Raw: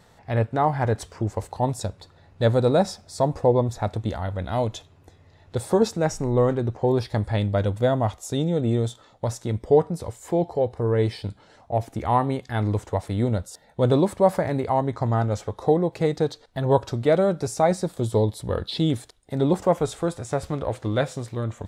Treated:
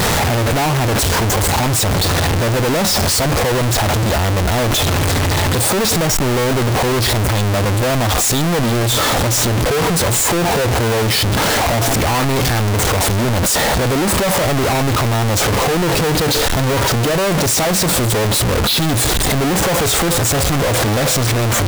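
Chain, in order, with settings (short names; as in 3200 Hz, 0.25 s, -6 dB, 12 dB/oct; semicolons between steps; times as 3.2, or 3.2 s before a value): infinite clipping; gain +8.5 dB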